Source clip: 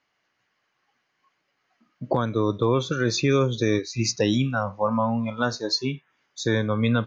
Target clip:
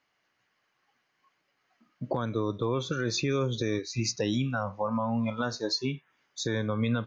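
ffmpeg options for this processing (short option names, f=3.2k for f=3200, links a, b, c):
-af "alimiter=limit=-17.5dB:level=0:latency=1:release=195,volume=-1.5dB"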